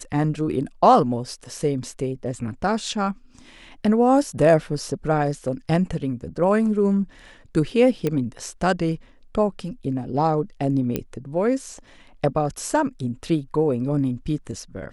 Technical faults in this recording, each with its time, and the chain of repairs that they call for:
0:08.07: click −11 dBFS
0:10.96: click −10 dBFS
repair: click removal

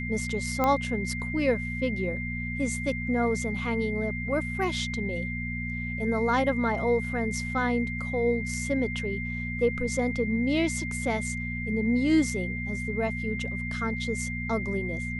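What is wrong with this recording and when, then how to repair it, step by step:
mains hum 60 Hz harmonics 4 −34 dBFS
whistle 2,100 Hz −34 dBFS
0:00.64: click −12 dBFS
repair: click removal
notch filter 2,100 Hz, Q 30
hum removal 60 Hz, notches 4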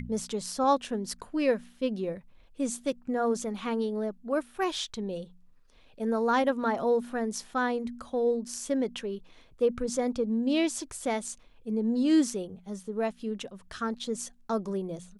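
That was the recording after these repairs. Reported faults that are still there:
none of them is left

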